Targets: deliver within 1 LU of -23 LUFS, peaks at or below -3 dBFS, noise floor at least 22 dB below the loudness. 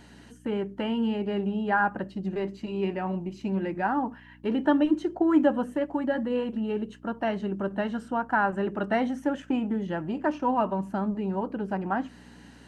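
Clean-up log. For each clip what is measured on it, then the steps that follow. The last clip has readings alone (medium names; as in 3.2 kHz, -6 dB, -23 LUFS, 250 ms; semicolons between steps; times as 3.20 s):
hum 60 Hz; highest harmonic 300 Hz; hum level -44 dBFS; loudness -28.5 LUFS; peak level -10.5 dBFS; loudness target -23.0 LUFS
-> de-hum 60 Hz, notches 5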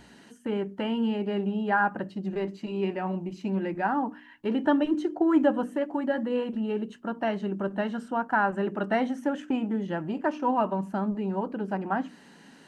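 hum not found; loudness -28.5 LUFS; peak level -11.0 dBFS; loudness target -23.0 LUFS
-> trim +5.5 dB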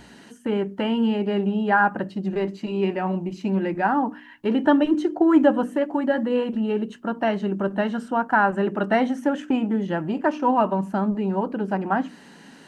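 loudness -23.0 LUFS; peak level -5.5 dBFS; noise floor -48 dBFS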